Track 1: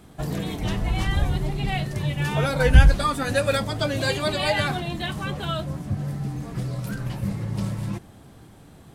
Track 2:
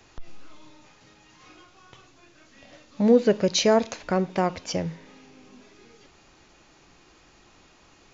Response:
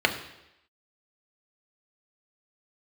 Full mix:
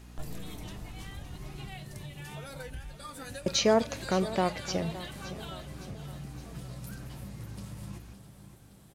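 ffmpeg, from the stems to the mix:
-filter_complex "[0:a]highshelf=f=4800:g=11,acompressor=threshold=0.0447:ratio=10,volume=0.251,asplit=2[s0][s1];[s1]volume=0.266[s2];[1:a]aeval=exprs='val(0)+0.00631*(sin(2*PI*60*n/s)+sin(2*PI*2*60*n/s)/2+sin(2*PI*3*60*n/s)/3+sin(2*PI*4*60*n/s)/4+sin(2*PI*5*60*n/s)/5)':c=same,volume=0.631,asplit=3[s3][s4][s5];[s3]atrim=end=1.69,asetpts=PTS-STARTPTS,afade=t=out:st=1.686:d=0.004:c=hsin[s6];[s4]atrim=start=1.69:end=3.46,asetpts=PTS-STARTPTS,volume=0[s7];[s5]atrim=start=3.46,asetpts=PTS-STARTPTS,afade=t=in:d=0.004:c=hsin[s8];[s6][s7][s8]concat=n=3:v=0:a=1,asplit=2[s9][s10];[s10]volume=0.168[s11];[s2][s11]amix=inputs=2:normalize=0,aecho=0:1:565|1130|1695|2260|2825|3390|3955|4520:1|0.53|0.281|0.149|0.0789|0.0418|0.0222|0.0117[s12];[s0][s9][s12]amix=inputs=3:normalize=0"

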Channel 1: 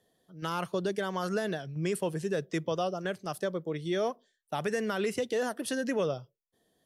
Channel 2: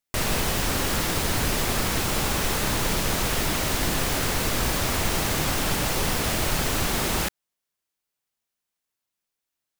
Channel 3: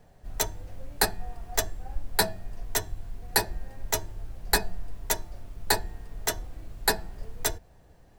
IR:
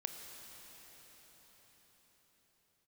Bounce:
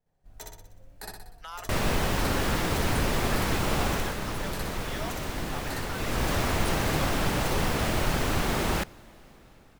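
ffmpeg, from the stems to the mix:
-filter_complex "[0:a]highpass=f=710:w=0.5412,highpass=f=710:w=1.3066,adelay=1000,volume=0.668[s0];[1:a]highshelf=f=3500:g=-10,adelay=1550,volume=1.88,afade=t=out:st=3.87:d=0.3:silence=0.473151,afade=t=in:st=5.93:d=0.38:silence=0.473151,asplit=2[s1][s2];[s2]volume=0.168[s3];[2:a]volume=0.224,asplit=2[s4][s5];[s5]volume=0.473[s6];[s0][s4]amix=inputs=2:normalize=0,agate=range=0.224:threshold=0.00141:ratio=16:detection=peak,alimiter=level_in=1.78:limit=0.0631:level=0:latency=1:release=40,volume=0.562,volume=1[s7];[3:a]atrim=start_sample=2205[s8];[s3][s8]afir=irnorm=-1:irlink=0[s9];[s6]aecho=0:1:61|122|183|244|305|366|427|488:1|0.53|0.281|0.149|0.0789|0.0418|0.0222|0.0117[s10];[s1][s7][s9][s10]amix=inputs=4:normalize=0"

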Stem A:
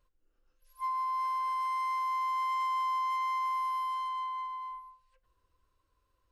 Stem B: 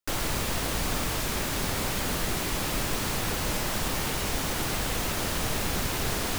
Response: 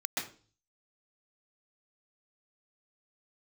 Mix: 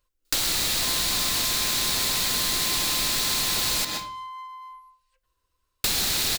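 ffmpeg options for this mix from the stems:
-filter_complex "[0:a]volume=0.668[s0];[1:a]equalizer=f=4100:t=o:w=0.51:g=9.5,adelay=250,volume=1.26,asplit=3[s1][s2][s3];[s1]atrim=end=3.85,asetpts=PTS-STARTPTS,afade=t=out:st=3.846:d=0.004:c=hsin[s4];[s2]atrim=start=3.85:end=5.84,asetpts=PTS-STARTPTS,volume=0[s5];[s3]atrim=start=5.84,asetpts=PTS-STARTPTS,afade=t=in:d=0.004:c=hsin[s6];[s4][s5][s6]concat=n=3:v=0:a=1,asplit=2[s7][s8];[s8]volume=0.398[s9];[2:a]atrim=start_sample=2205[s10];[s9][s10]afir=irnorm=-1:irlink=0[s11];[s0][s7][s11]amix=inputs=3:normalize=0,highshelf=f=2300:g=11.5,acompressor=threshold=0.0794:ratio=6"

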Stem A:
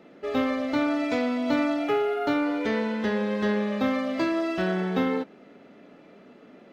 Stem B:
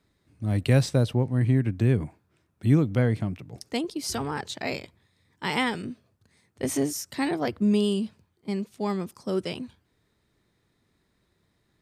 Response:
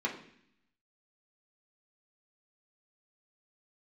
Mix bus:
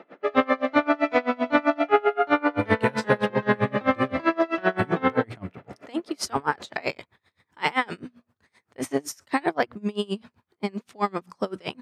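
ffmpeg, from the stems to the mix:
-filter_complex "[0:a]highshelf=f=5500:g=-8.5,volume=1.06[s0];[1:a]acompressor=threshold=0.0631:ratio=6,adelay=2150,volume=1.06[s1];[s0][s1]amix=inputs=2:normalize=0,equalizer=f=1200:w=0.35:g=14,bandreject=f=60:t=h:w=6,bandreject=f=120:t=h:w=6,bandreject=f=180:t=h:w=6,bandreject=f=240:t=h:w=6,aeval=exprs='val(0)*pow(10,-28*(0.5-0.5*cos(2*PI*7.7*n/s))/20)':c=same"

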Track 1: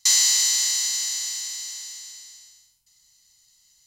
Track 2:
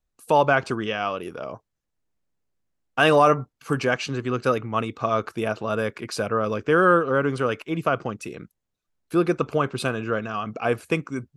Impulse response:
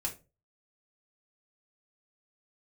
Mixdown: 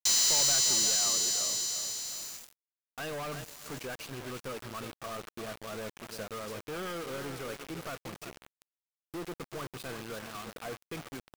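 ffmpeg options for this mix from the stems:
-filter_complex "[0:a]equalizer=f=2100:t=o:w=0.64:g=-9,asoftclip=type=tanh:threshold=0.0531,volume=1.26[s0];[1:a]asoftclip=type=hard:threshold=0.0841,volume=0.188,asplit=2[s1][s2];[s2]volume=0.398,aecho=0:1:355|710|1065|1420|1775|2130:1|0.4|0.16|0.064|0.0256|0.0102[s3];[s0][s1][s3]amix=inputs=3:normalize=0,acrusher=bits=6:mix=0:aa=0.000001"

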